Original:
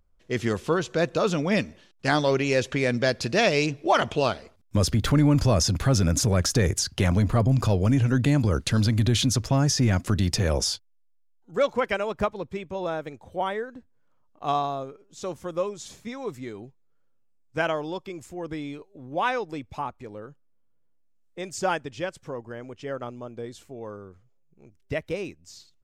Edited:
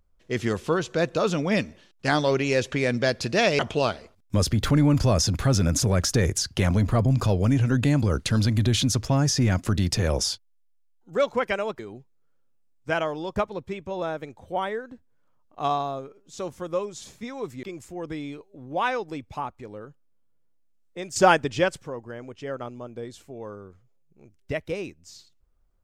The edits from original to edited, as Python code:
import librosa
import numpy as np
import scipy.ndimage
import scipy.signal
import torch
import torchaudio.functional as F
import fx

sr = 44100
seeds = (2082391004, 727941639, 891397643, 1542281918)

y = fx.edit(x, sr, fx.cut(start_s=3.59, length_s=0.41),
    fx.move(start_s=16.47, length_s=1.57, to_s=12.2),
    fx.clip_gain(start_s=21.57, length_s=0.66, db=8.5), tone=tone)